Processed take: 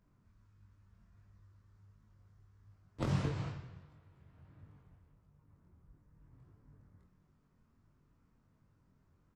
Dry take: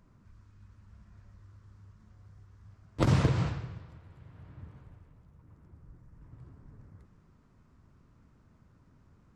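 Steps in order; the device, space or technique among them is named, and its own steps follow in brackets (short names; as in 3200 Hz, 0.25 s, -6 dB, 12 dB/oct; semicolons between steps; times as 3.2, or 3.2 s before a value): double-tracked vocal (doubler 27 ms -10.5 dB; chorus 1.5 Hz, delay 20 ms, depth 2.6 ms); gain -6.5 dB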